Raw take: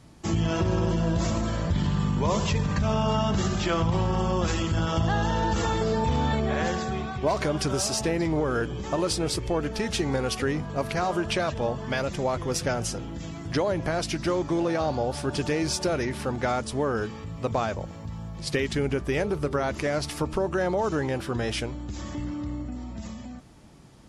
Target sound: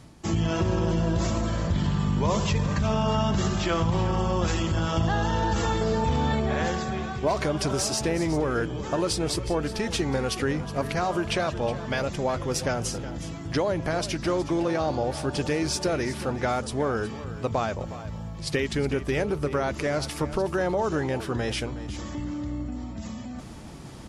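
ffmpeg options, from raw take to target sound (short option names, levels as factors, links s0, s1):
-af "areverse,acompressor=mode=upward:threshold=0.0282:ratio=2.5,areverse,aecho=1:1:367:0.2"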